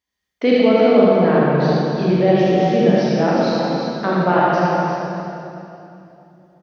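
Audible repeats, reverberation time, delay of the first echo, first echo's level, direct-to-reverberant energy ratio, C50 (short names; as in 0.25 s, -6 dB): 2, 2.9 s, 77 ms, -4.0 dB, -7.5 dB, -5.5 dB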